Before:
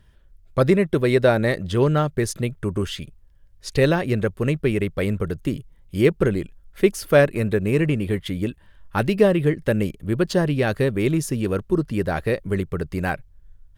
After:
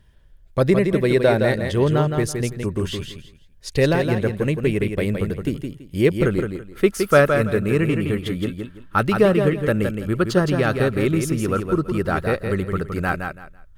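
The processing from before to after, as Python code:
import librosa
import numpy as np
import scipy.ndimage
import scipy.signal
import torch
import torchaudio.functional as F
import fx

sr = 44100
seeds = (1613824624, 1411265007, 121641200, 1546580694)

y = fx.peak_eq(x, sr, hz=1300.0, db=fx.steps((0.0, -4.5), (6.26, 12.5)), octaves=0.25)
y = fx.echo_feedback(y, sr, ms=166, feedback_pct=23, wet_db=-6)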